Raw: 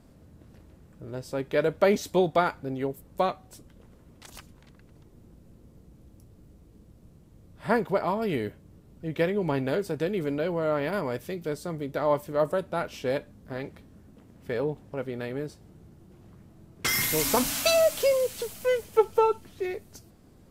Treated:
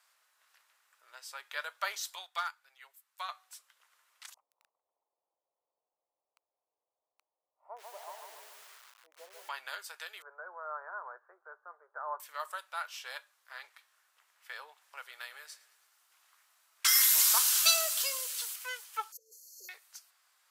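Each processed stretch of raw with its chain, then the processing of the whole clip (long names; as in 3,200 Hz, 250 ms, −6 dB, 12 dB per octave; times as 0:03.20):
0:02.15–0:03.29: high-pass filter 1,000 Hz 6 dB per octave + hard clipping −17.5 dBFS + expander for the loud parts, over −40 dBFS
0:04.34–0:09.49: inverse Chebyshev low-pass filter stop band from 1,500 Hz + hum removal 72.68 Hz, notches 6 + feedback echo at a low word length 142 ms, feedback 55%, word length 8 bits, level −4 dB
0:10.22–0:12.20: Chebyshev band-pass filter 350–1,600 Hz, order 5 + spectral tilt −4.5 dB per octave
0:14.81–0:18.56: high-shelf EQ 3,800 Hz +5.5 dB + repeating echo 109 ms, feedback 55%, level −19.5 dB
0:19.12–0:19.69: EQ curve with evenly spaced ripples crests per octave 1.1, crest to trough 10 dB + compressor whose output falls as the input rises −31 dBFS + linear-phase brick-wall band-stop 590–4,200 Hz
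whole clip: inverse Chebyshev high-pass filter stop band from 190 Hz, stop band 80 dB; dynamic equaliser 2,200 Hz, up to −7 dB, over −50 dBFS, Q 2.2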